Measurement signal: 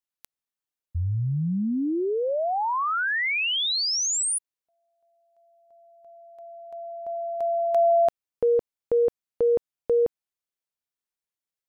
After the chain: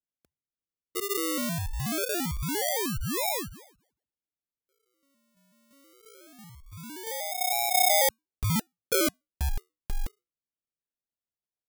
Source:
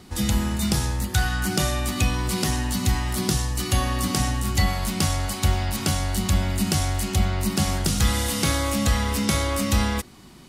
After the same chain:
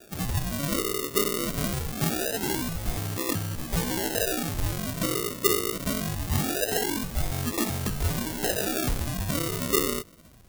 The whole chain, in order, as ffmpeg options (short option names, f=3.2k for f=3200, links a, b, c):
-af "lowpass=f=2.5k:t=q:w=0.5098,lowpass=f=2.5k:t=q:w=0.6013,lowpass=f=2.5k:t=q:w=0.9,lowpass=f=2.5k:t=q:w=2.563,afreqshift=-2900,acrusher=samples=42:mix=1:aa=0.000001:lfo=1:lforange=25.2:lforate=0.23,crystalizer=i=2.5:c=0,volume=-6dB"